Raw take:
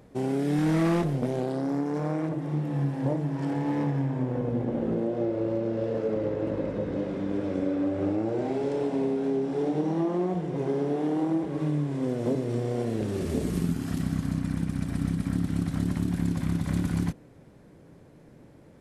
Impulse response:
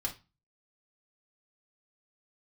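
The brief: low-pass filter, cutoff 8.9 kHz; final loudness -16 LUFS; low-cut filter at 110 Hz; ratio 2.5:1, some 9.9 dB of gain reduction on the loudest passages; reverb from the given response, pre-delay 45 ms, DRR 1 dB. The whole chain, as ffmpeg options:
-filter_complex "[0:a]highpass=110,lowpass=8900,acompressor=threshold=0.0126:ratio=2.5,asplit=2[s0][s1];[1:a]atrim=start_sample=2205,adelay=45[s2];[s1][s2]afir=irnorm=-1:irlink=0,volume=0.708[s3];[s0][s3]amix=inputs=2:normalize=0,volume=8.91"

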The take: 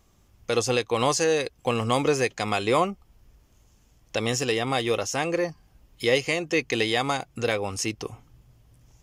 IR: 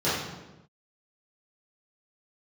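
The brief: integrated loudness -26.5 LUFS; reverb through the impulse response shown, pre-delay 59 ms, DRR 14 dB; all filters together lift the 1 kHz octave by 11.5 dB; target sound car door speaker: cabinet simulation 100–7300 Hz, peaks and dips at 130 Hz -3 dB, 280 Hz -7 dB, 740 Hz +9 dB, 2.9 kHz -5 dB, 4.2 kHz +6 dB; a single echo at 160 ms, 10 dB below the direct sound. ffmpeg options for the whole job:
-filter_complex "[0:a]equalizer=f=1000:t=o:g=9,aecho=1:1:160:0.316,asplit=2[s0][s1];[1:a]atrim=start_sample=2205,adelay=59[s2];[s1][s2]afir=irnorm=-1:irlink=0,volume=0.0376[s3];[s0][s3]amix=inputs=2:normalize=0,highpass=100,equalizer=f=130:t=q:w=4:g=-3,equalizer=f=280:t=q:w=4:g=-7,equalizer=f=740:t=q:w=4:g=9,equalizer=f=2900:t=q:w=4:g=-5,equalizer=f=4200:t=q:w=4:g=6,lowpass=f=7300:w=0.5412,lowpass=f=7300:w=1.3066,volume=0.473"

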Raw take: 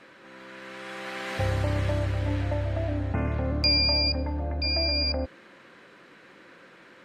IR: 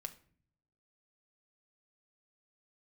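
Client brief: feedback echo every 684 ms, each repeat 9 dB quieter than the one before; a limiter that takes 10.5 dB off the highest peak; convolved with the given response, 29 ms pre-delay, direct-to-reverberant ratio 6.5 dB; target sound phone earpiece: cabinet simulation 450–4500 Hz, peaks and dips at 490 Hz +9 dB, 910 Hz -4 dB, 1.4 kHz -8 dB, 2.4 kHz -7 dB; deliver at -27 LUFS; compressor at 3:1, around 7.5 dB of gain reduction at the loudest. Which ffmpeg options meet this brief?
-filter_complex "[0:a]acompressor=threshold=0.0355:ratio=3,alimiter=level_in=1.78:limit=0.0631:level=0:latency=1,volume=0.562,aecho=1:1:684|1368|2052|2736:0.355|0.124|0.0435|0.0152,asplit=2[s0][s1];[1:a]atrim=start_sample=2205,adelay=29[s2];[s1][s2]afir=irnorm=-1:irlink=0,volume=0.708[s3];[s0][s3]amix=inputs=2:normalize=0,highpass=450,equalizer=f=490:t=q:w=4:g=9,equalizer=f=910:t=q:w=4:g=-4,equalizer=f=1400:t=q:w=4:g=-8,equalizer=f=2400:t=q:w=4:g=-7,lowpass=f=4500:w=0.5412,lowpass=f=4500:w=1.3066,volume=3.98"

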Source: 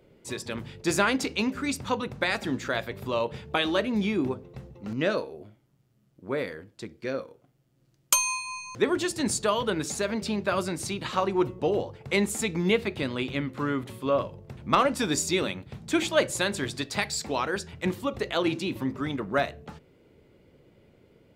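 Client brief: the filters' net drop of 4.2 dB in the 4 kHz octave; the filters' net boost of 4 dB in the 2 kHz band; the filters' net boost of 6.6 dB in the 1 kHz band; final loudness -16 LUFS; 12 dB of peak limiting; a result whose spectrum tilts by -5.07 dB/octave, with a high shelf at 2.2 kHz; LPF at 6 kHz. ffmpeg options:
-af "lowpass=6000,equalizer=f=1000:t=o:g=7.5,equalizer=f=2000:t=o:g=5.5,highshelf=f=2200:g=-3.5,equalizer=f=4000:t=o:g=-4,volume=4.22,alimiter=limit=0.75:level=0:latency=1"

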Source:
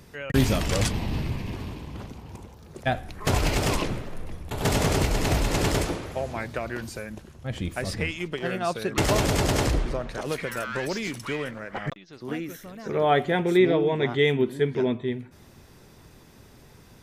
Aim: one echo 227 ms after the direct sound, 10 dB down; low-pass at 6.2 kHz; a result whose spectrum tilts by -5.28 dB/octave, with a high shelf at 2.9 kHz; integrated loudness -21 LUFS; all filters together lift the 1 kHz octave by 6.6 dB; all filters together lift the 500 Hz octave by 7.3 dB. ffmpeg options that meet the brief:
-af "lowpass=6200,equalizer=f=500:t=o:g=8,equalizer=f=1000:t=o:g=5,highshelf=f=2900:g=5,aecho=1:1:227:0.316"

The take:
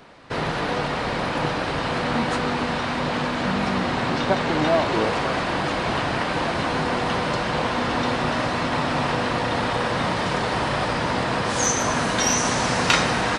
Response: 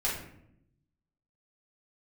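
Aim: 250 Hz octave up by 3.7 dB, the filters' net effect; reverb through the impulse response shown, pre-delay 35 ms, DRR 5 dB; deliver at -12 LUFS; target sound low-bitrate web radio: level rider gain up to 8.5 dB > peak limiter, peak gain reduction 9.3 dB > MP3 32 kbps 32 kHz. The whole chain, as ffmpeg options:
-filter_complex "[0:a]equalizer=f=250:t=o:g=4.5,asplit=2[s0][s1];[1:a]atrim=start_sample=2205,adelay=35[s2];[s1][s2]afir=irnorm=-1:irlink=0,volume=0.237[s3];[s0][s3]amix=inputs=2:normalize=0,dynaudnorm=m=2.66,alimiter=limit=0.211:level=0:latency=1,volume=3.55" -ar 32000 -c:a libmp3lame -b:a 32k

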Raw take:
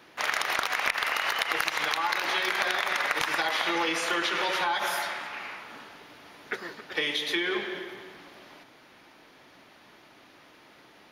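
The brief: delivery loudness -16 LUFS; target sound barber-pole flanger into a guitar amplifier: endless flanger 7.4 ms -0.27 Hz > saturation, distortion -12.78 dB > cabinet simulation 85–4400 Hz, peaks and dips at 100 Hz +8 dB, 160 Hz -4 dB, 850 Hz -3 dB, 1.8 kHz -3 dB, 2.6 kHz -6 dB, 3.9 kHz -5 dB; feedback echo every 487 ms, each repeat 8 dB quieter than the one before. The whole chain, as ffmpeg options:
-filter_complex "[0:a]aecho=1:1:487|974|1461|1948|2435:0.398|0.159|0.0637|0.0255|0.0102,asplit=2[s0][s1];[s1]adelay=7.4,afreqshift=-0.27[s2];[s0][s2]amix=inputs=2:normalize=1,asoftclip=threshold=0.0447,highpass=85,equalizer=f=100:t=q:w=4:g=8,equalizer=f=160:t=q:w=4:g=-4,equalizer=f=850:t=q:w=4:g=-3,equalizer=f=1800:t=q:w=4:g=-3,equalizer=f=2600:t=q:w=4:g=-6,equalizer=f=3900:t=q:w=4:g=-5,lowpass=f=4400:w=0.5412,lowpass=f=4400:w=1.3066,volume=10"

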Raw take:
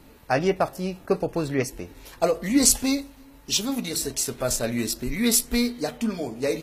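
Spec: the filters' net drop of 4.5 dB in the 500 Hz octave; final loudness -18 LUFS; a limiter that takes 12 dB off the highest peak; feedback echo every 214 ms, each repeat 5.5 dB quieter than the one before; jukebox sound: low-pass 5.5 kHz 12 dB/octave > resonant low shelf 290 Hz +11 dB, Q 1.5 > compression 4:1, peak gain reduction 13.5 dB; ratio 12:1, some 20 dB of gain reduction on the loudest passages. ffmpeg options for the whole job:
-af "equalizer=f=500:t=o:g=-3.5,acompressor=threshold=0.0178:ratio=12,alimiter=level_in=2.99:limit=0.0631:level=0:latency=1,volume=0.335,lowpass=5500,lowshelf=f=290:t=q:w=1.5:g=11,aecho=1:1:214|428|642|856|1070|1284|1498:0.531|0.281|0.149|0.079|0.0419|0.0222|0.0118,acompressor=threshold=0.00891:ratio=4,volume=18.8"

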